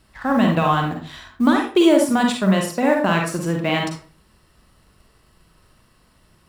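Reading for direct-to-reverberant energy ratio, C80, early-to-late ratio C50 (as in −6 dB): 1.0 dB, 9.5 dB, 3.0 dB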